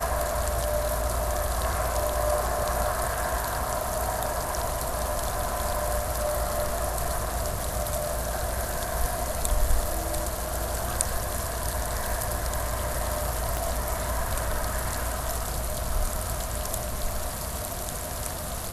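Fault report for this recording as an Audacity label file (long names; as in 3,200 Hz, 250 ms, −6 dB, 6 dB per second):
13.570000	13.570000	click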